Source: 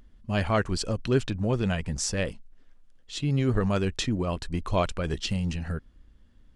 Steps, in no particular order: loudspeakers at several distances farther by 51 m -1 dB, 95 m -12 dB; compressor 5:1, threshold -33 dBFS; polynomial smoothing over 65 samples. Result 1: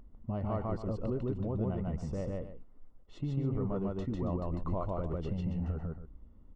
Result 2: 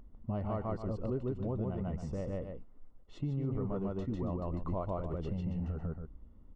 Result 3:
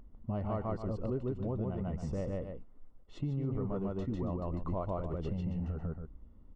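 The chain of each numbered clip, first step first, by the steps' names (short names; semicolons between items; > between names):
compressor > loudspeakers at several distances > polynomial smoothing; loudspeakers at several distances > compressor > polynomial smoothing; loudspeakers at several distances > polynomial smoothing > compressor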